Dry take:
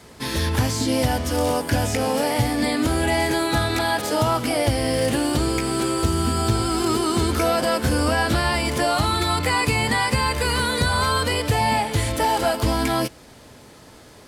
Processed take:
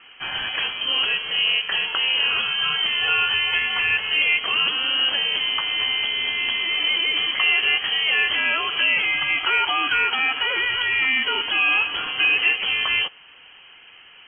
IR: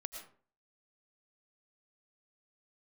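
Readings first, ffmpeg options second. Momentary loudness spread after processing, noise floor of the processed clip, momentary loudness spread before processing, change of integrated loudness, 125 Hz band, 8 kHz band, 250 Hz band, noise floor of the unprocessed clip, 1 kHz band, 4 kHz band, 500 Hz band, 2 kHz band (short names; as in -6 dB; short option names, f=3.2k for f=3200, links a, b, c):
4 LU, -48 dBFS, 2 LU, +2.0 dB, under -25 dB, under -40 dB, -20.5 dB, -46 dBFS, -7.0 dB, +9.0 dB, -16.0 dB, +7.0 dB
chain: -af "highpass=310,lowpass=f=2.9k:t=q:w=0.5098,lowpass=f=2.9k:t=q:w=0.6013,lowpass=f=2.9k:t=q:w=0.9,lowpass=f=2.9k:t=q:w=2.563,afreqshift=-3400,volume=2dB"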